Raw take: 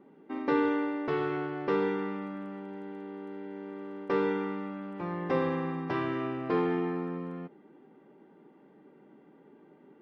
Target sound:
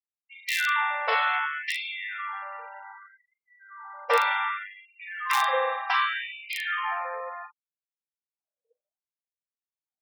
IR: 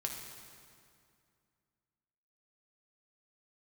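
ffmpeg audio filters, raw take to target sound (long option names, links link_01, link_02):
-filter_complex "[0:a]asplit=2[link_01][link_02];[1:a]atrim=start_sample=2205[link_03];[link_02][link_03]afir=irnorm=-1:irlink=0,volume=-16.5dB[link_04];[link_01][link_04]amix=inputs=2:normalize=0,adynamicequalizer=threshold=0.00355:dfrequency=2700:dqfactor=1.3:tfrequency=2700:tqfactor=1.3:attack=5:release=100:ratio=0.375:range=2:mode=boostabove:tftype=bell,aeval=exprs='0.237*(cos(1*acos(clip(val(0)/0.237,-1,1)))-cos(1*PI/2))+0.00531*(cos(6*acos(clip(val(0)/0.237,-1,1)))-cos(6*PI/2))':channel_layout=same,aemphasis=mode=production:type=bsi,afftfilt=real='re*gte(hypot(re,im),0.00631)':imag='im*gte(hypot(re,im),0.00631)':win_size=1024:overlap=0.75,asplit=2[link_05][link_06];[link_06]aeval=exprs='(mod(7.94*val(0)+1,2)-1)/7.94':channel_layout=same,volume=-5dB[link_07];[link_05][link_07]amix=inputs=2:normalize=0,asplit=2[link_08][link_09];[link_09]adelay=40,volume=-5.5dB[link_10];[link_08][link_10]amix=inputs=2:normalize=0,afftfilt=real='re*gte(b*sr/1024,470*pow(2100/470,0.5+0.5*sin(2*PI*0.66*pts/sr)))':imag='im*gte(b*sr/1024,470*pow(2100/470,0.5+0.5*sin(2*PI*0.66*pts/sr)))':win_size=1024:overlap=0.75,volume=5dB"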